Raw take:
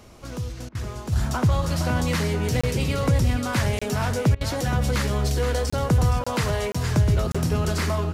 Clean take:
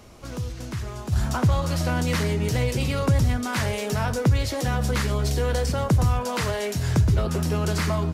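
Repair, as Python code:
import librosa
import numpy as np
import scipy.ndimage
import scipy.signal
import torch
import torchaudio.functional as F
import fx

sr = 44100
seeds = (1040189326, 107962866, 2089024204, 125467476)

y = fx.fix_interpolate(x, sr, at_s=(2.61, 3.79, 5.7, 6.24, 6.72, 7.32), length_ms=25.0)
y = fx.fix_interpolate(y, sr, at_s=(0.69, 4.35), length_ms=58.0)
y = fx.fix_echo_inverse(y, sr, delay_ms=470, level_db=-8.5)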